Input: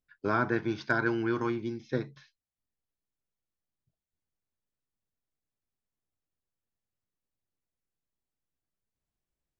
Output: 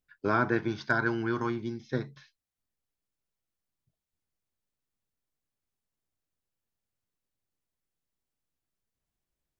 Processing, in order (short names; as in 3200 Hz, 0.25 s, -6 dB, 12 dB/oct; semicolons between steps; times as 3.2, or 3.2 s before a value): 0.68–2.13 thirty-one-band EQ 315 Hz -5 dB, 500 Hz -4 dB, 2500 Hz -6 dB; gain +1.5 dB